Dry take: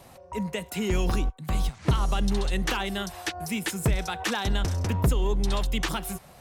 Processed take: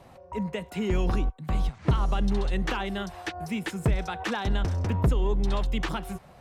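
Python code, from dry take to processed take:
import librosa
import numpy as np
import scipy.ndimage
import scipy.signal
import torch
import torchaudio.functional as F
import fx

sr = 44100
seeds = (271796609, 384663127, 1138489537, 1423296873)

y = fx.lowpass(x, sr, hz=2100.0, slope=6)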